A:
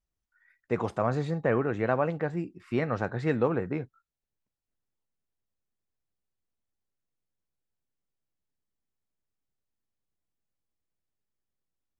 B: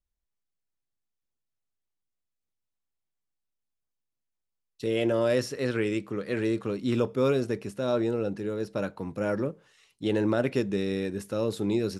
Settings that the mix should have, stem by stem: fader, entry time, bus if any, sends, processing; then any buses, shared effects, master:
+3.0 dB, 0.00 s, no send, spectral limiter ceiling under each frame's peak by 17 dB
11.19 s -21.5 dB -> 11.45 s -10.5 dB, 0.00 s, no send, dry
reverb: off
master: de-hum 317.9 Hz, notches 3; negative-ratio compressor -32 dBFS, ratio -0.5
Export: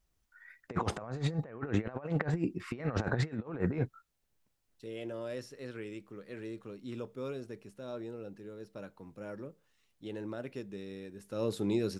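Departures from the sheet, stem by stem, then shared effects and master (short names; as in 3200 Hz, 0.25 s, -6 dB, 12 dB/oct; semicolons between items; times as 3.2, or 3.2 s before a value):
stem A: missing spectral limiter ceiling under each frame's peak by 17 dB; master: missing de-hum 317.9 Hz, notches 3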